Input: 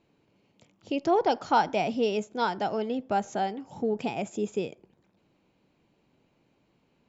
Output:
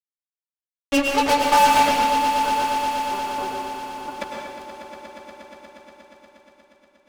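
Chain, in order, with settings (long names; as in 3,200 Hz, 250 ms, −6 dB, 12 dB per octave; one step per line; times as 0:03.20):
parametric band 320 Hz −9.5 dB 0.55 octaves
stiff-string resonator 280 Hz, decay 0.29 s, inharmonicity 0.008
fuzz pedal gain 43 dB, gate −43 dBFS
0:01.95–0:04.14: Chebyshev low-pass with heavy ripple 1,500 Hz, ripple 9 dB
echo that builds up and dies away 119 ms, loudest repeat 5, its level −13 dB
dense smooth reverb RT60 1.1 s, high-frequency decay 1×, pre-delay 90 ms, DRR 0.5 dB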